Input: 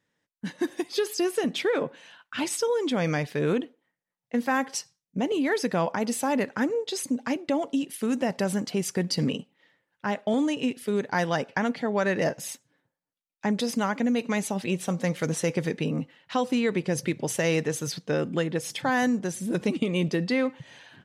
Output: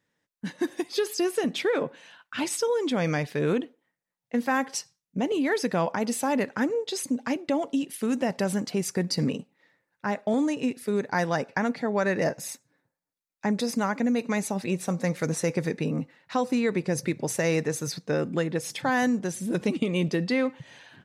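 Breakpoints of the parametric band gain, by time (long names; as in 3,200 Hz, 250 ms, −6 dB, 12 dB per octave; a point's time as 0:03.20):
parametric band 3,100 Hz 0.21 octaves
0:08.58 −2 dB
0:09.02 −13.5 dB
0:18.15 −13.5 dB
0:18.89 −2 dB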